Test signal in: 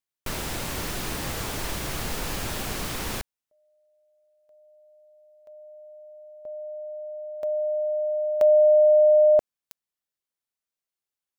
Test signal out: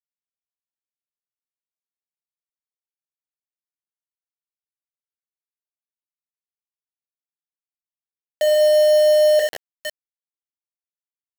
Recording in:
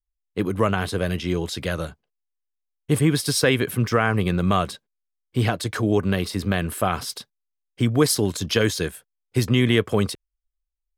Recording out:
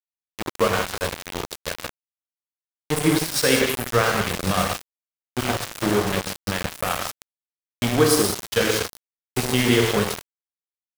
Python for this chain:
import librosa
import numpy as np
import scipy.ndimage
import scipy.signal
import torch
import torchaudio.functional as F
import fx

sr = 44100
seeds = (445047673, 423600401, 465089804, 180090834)

y = fx.peak_eq(x, sr, hz=140.0, db=-6.5, octaves=0.63)
y = fx.echo_diffused(y, sr, ms=1335, feedback_pct=55, wet_db=-10.0)
y = fx.noise_reduce_blind(y, sr, reduce_db=26)
y = y * (1.0 - 0.29 / 2.0 + 0.29 / 2.0 * np.cos(2.0 * np.pi * 6.5 * (np.arange(len(y)) / sr)))
y = fx.rev_gated(y, sr, seeds[0], gate_ms=220, shape='flat', drr_db=-1.0)
y = np.where(np.abs(y) >= 10.0 ** (-19.5 / 20.0), y, 0.0)